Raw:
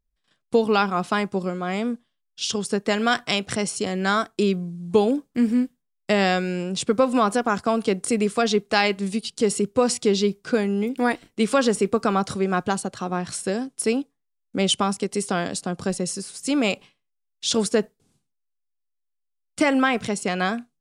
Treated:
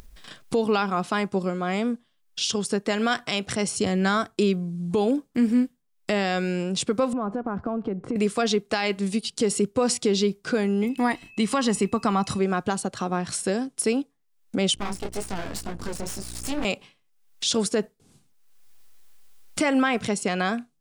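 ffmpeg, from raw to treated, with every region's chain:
-filter_complex "[0:a]asettb=1/sr,asplit=3[a][b][c];[a]atrim=end=3.684[d];[b]atrim=start=3.68:end=4.35,asetpts=PTS-STARTPTS,afade=t=in:d=0.004:c=qsin,afade=t=out:st=0.666:d=0.004:c=qsin,deesser=0.4,equalizer=f=82:t=o:w=1.8:g=10.5[e];[c]atrim=start=4.346[f];[d][e]acrossfade=d=0.004:c1=hsin:c2=qsin[g];[g][f]acrossfade=d=0.004:c1=qsin:c2=hsin,asettb=1/sr,asplit=3[h][i][j];[h]atrim=end=7.134[k];[i]atrim=start=7.13:end=8.16,asetpts=PTS-STARTPTS,afade=t=in:d=0.004:c=qsin,afade=t=out:st=1.026:d=0.004:c=qsin,lowpass=1.2k,lowshelf=f=190:g=10.5,acompressor=threshold=-28dB:ratio=3:attack=3.2:release=140:knee=1:detection=peak[l];[j]atrim=start=8.156[m];[k][l]acrossfade=d=0.004:c1=hsin:c2=qsin[n];[n][m]acrossfade=d=0.004:c1=qsin:c2=hsin,asettb=1/sr,asplit=3[o][p][q];[o]atrim=end=10.844[r];[p]atrim=start=10.84:end=12.39,asetpts=PTS-STARTPTS,afade=t=in:d=0.004:c=qsin,afade=t=out:st=1.546:d=0.004:c=qsin,aecho=1:1:1:0.47,atrim=end_sample=68355,aeval=exprs='val(0)+0.00282*sin(2*PI*2600*n/s)':c=same[s];[q]atrim=start=12.386[t];[r][s]acrossfade=d=0.004:c1=hsin:c2=qsin[u];[u][t]acrossfade=d=0.004:c1=qsin:c2=hsin,asettb=1/sr,asplit=3[v][w][x];[v]atrim=end=14.754[y];[w]atrim=start=14.75:end=16.65,asetpts=PTS-STARTPTS,afade=t=in:d=0.004:c=qsin,afade=t=out:st=1.896:d=0.004:c=qsin,flanger=delay=18.5:depth=7.5:speed=2,aeval=exprs='val(0)+0.00891*(sin(2*PI*60*n/s)+sin(2*PI*2*60*n/s)/2+sin(2*PI*3*60*n/s)/3+sin(2*PI*4*60*n/s)/4+sin(2*PI*5*60*n/s)/5)':c=same,aeval=exprs='max(val(0),0)':c=same[z];[x]atrim=start=16.646[aa];[y][z]acrossfade=d=0.004:c1=hsin:c2=qsin[ab];[ab][aa]acrossfade=d=0.004:c1=qsin:c2=hsin,alimiter=limit=-13dB:level=0:latency=1:release=102,acompressor=mode=upward:threshold=-24dB:ratio=2.5"

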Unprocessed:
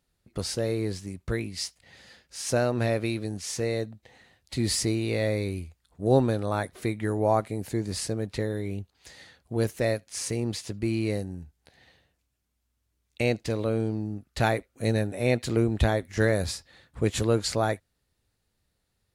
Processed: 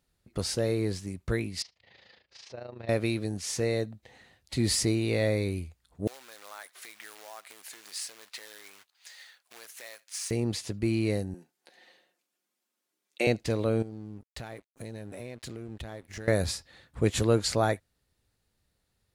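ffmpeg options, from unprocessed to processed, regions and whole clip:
-filter_complex "[0:a]asettb=1/sr,asplit=3[a][b][c];[a]atrim=end=1.624[d];[b]atrim=start=1.62:end=2.89,asetpts=PTS-STARTPTS,afade=t=in:d=0.004:c=qsin,afade=t=out:st=1.266:d=0.004:c=qsin,acompressor=threshold=-35dB:ratio=5:attack=3.2:release=140:knee=1:detection=peak,tremolo=f=27:d=0.71,highpass=100,equalizer=f=160:t=q:w=4:g=-9,equalizer=f=260:t=q:w=4:g=-9,equalizer=f=1.5k:t=q:w=4:g=-5,lowpass=f=4.5k:w=0.5412,lowpass=f=4.5k:w=1.3066[e];[c]atrim=start=2.886[f];[d][e]acrossfade=d=0.004:c1=hsin:c2=qsin[g];[g][f]acrossfade=d=0.004:c1=qsin:c2=hsin,asettb=1/sr,asplit=3[h][i][j];[h]atrim=end=6.074[k];[i]atrim=start=6.07:end=10.31,asetpts=PTS-STARTPTS,afade=t=in:d=0.004:c=qsin,afade=t=out:st=4.236:d=0.004:c=qsin,acompressor=threshold=-31dB:ratio=12:attack=3.2:release=140:knee=1:detection=peak,acrusher=bits=3:mode=log:mix=0:aa=0.000001,highpass=1.2k[l];[j]atrim=start=10.306[m];[k][l]acrossfade=d=0.004:c1=hsin:c2=qsin[n];[n][m]acrossfade=d=0.004:c1=qsin:c2=hsin,asettb=1/sr,asplit=3[o][p][q];[o]atrim=end=11.344[r];[p]atrim=start=11.34:end=13.27,asetpts=PTS-STARTPTS,afade=t=in:d=0.004:c=qsin,afade=t=out:st=1.926:d=0.004:c=qsin,highpass=f=260:w=0.5412,highpass=f=260:w=1.3066,aecho=1:1:5.6:0.44,atrim=end_sample=85113[s];[q]atrim=start=13.266[t];[r][s]acrossfade=d=0.004:c1=hsin:c2=qsin[u];[u][t]acrossfade=d=0.004:c1=qsin:c2=hsin,asettb=1/sr,asplit=3[v][w][x];[v]atrim=end=13.824[y];[w]atrim=start=13.82:end=16.28,asetpts=PTS-STARTPTS,afade=t=in:d=0.004:c=qsin,afade=t=out:st=2.456:d=0.004:c=qsin,acompressor=threshold=-36dB:ratio=10:attack=3.2:release=140:knee=1:detection=peak,aeval=exprs='sgn(val(0))*max(abs(val(0))-0.0015,0)':c=same[z];[x]atrim=start=16.276[aa];[y][z]acrossfade=d=0.004:c1=hsin:c2=qsin[ab];[ab][aa]acrossfade=d=0.004:c1=qsin:c2=hsin"

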